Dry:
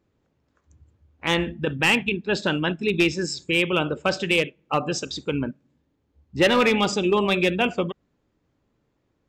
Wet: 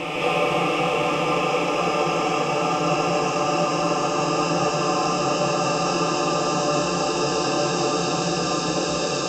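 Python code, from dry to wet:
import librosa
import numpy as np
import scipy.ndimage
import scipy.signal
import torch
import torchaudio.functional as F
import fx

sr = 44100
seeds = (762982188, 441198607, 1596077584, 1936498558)

y = fx.paulstretch(x, sr, seeds[0], factor=23.0, window_s=1.0, from_s=4.61)
y = fx.rev_gated(y, sr, seeds[1], gate_ms=260, shape='rising', drr_db=-5.0)
y = y * librosa.db_to_amplitude(-2.0)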